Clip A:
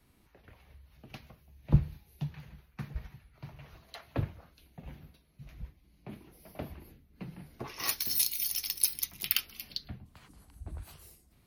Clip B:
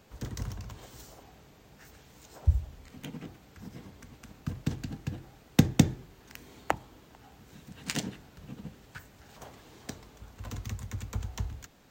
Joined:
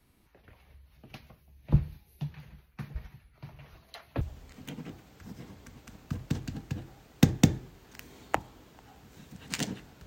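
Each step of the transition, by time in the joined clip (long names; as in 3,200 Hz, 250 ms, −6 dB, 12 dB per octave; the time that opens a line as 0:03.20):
clip A
0:04.21: continue with clip B from 0:02.57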